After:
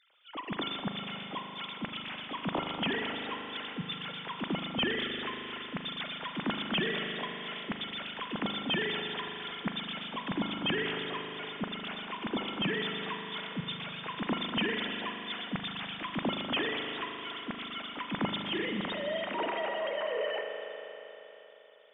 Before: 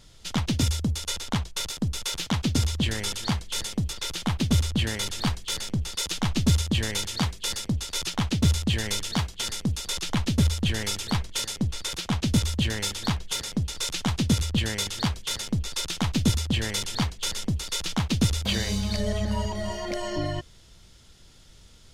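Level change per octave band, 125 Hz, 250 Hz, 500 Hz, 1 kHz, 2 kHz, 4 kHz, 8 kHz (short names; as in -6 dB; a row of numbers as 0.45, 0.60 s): -18.0 dB, -8.0 dB, 0.0 dB, -0.5 dB, 0.0 dB, -5.5 dB, under -40 dB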